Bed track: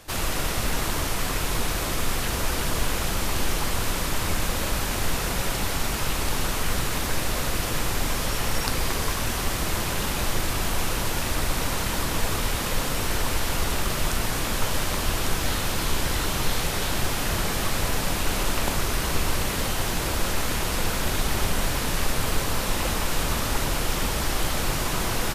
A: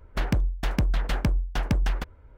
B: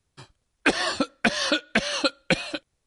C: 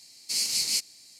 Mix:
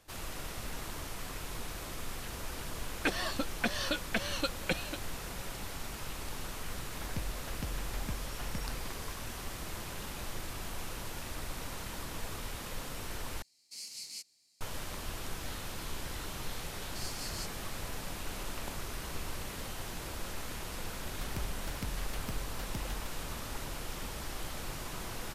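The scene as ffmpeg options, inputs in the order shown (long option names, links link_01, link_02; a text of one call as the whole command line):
ffmpeg -i bed.wav -i cue0.wav -i cue1.wav -i cue2.wav -filter_complex "[1:a]asplit=2[link_01][link_02];[3:a]asplit=2[link_03][link_04];[0:a]volume=-15dB[link_05];[link_02]aemphasis=mode=production:type=50kf[link_06];[link_05]asplit=2[link_07][link_08];[link_07]atrim=end=13.424[link_09];[link_03]atrim=end=1.19,asetpts=PTS-STARTPTS,volume=-17.5dB[link_10];[link_08]atrim=start=14.606[link_11];[2:a]atrim=end=2.86,asetpts=PTS-STARTPTS,volume=-10.5dB,afade=type=in:duration=0.004:curve=hsin,afade=type=out:start_time=2.856:duration=0.004:curve=hsin,adelay=2390[link_12];[link_01]atrim=end=2.37,asetpts=PTS-STARTPTS,volume=-16dB,afade=type=in:duration=0.004:curve=hsin,afade=type=out:start_time=2.366:duration=0.004:curve=hsin,adelay=6840[link_13];[link_04]atrim=end=1.19,asetpts=PTS-STARTPTS,volume=-17dB,afade=type=in:duration=0.004:curve=hsin,afade=type=out:start_time=1.186:duration=0.004:curve=hsin,adelay=16660[link_14];[link_06]atrim=end=2.37,asetpts=PTS-STARTPTS,volume=-17dB,afade=type=in:duration=0.004:curve=hsin,afade=type=out:start_time=2.366:duration=0.004:curve=hsin,adelay=21040[link_15];[link_09][link_10]acrossfade=duration=0.004:curve1=hsin:curve2=hsin[link_16];[link_16][link_11]acrossfade=duration=0.004:curve1=hsin:curve2=hsin[link_17];[link_17][link_12][link_13][link_14][link_15]amix=inputs=5:normalize=0" out.wav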